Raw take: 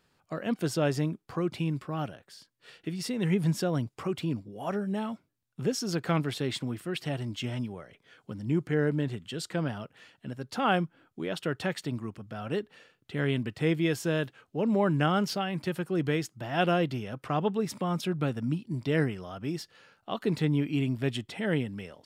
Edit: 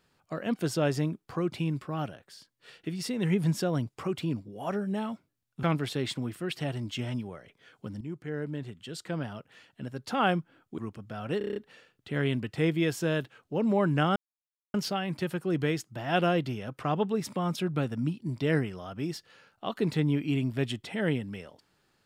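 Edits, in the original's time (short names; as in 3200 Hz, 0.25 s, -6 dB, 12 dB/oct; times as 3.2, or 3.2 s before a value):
5.63–6.08 cut
8.46–10.33 fade in, from -12 dB
11.23–11.99 cut
12.59 stutter 0.03 s, 7 plays
15.19 insert silence 0.58 s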